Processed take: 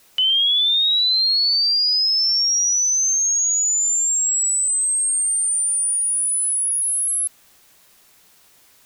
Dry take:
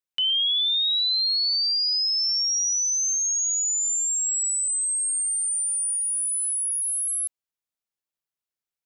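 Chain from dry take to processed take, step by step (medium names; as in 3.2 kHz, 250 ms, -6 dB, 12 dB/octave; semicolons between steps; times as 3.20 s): peaking EQ 230 Hz -13.5 dB 0.39 oct; in parallel at -8 dB: word length cut 8-bit, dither triangular; on the sum: trim +2.5 dB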